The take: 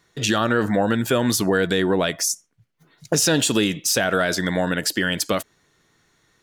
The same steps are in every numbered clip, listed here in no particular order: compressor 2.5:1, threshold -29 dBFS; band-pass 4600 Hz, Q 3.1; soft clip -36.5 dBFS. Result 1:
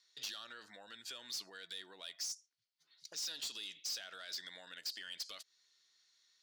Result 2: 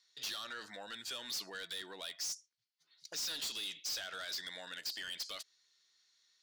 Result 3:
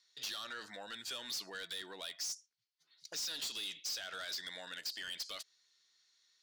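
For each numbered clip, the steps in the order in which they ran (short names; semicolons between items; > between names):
compressor > band-pass > soft clip; band-pass > soft clip > compressor; band-pass > compressor > soft clip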